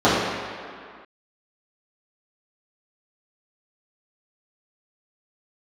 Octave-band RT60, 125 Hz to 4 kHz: 1.5 s, 2.0 s, 2.0 s, 2.3 s, no reading, 1.6 s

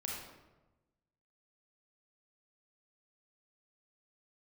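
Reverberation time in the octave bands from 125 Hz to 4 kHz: 1.4 s, 1.3 s, 1.2 s, 1.0 s, 0.85 s, 0.65 s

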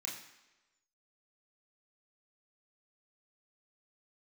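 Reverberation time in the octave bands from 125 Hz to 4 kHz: 0.80 s, 0.95 s, 1.1 s, 1.1 s, 1.1 s, 1.0 s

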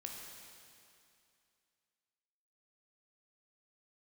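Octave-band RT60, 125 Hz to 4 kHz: 2.5 s, 2.5 s, 2.5 s, 2.6 s, 2.5 s, 2.5 s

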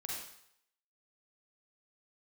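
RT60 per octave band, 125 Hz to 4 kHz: 0.65 s, 0.55 s, 0.70 s, 0.75 s, 0.70 s, 0.70 s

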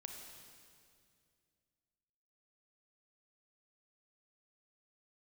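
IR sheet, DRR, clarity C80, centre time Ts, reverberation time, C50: 2.5 dB, 4.5 dB, 69 ms, 2.3 s, 3.0 dB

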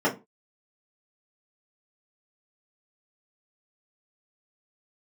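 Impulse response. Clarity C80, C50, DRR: 20.5 dB, 14.0 dB, -6.5 dB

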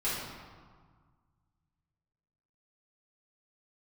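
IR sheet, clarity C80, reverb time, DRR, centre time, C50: 2.0 dB, 1.7 s, -11.0 dB, 93 ms, -0.5 dB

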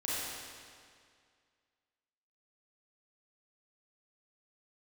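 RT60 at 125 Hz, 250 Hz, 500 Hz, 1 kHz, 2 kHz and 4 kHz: 2.1 s, 2.1 s, 2.1 s, 2.1 s, 2.0 s, 1.9 s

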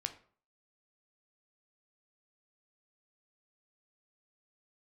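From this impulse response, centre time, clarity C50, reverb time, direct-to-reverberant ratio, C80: 7 ms, 13.5 dB, 0.50 s, 7.5 dB, 17.5 dB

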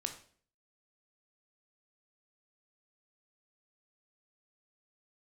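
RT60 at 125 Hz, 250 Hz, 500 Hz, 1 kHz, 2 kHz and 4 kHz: 0.60 s, 0.60 s, 0.55 s, 0.45 s, 0.45 s, 0.45 s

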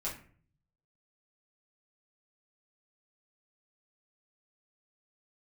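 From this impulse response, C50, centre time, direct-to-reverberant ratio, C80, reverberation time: 8.0 dB, 27 ms, -7.5 dB, 12.5 dB, 0.45 s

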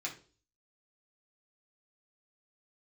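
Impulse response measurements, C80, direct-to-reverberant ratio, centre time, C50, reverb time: 16.5 dB, -3.0 dB, 15 ms, 11.0 dB, 0.40 s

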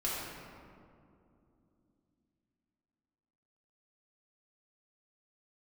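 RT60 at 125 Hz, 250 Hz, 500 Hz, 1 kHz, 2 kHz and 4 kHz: 3.9 s, 4.3 s, 3.0 s, 2.3 s, 1.6 s, 1.1 s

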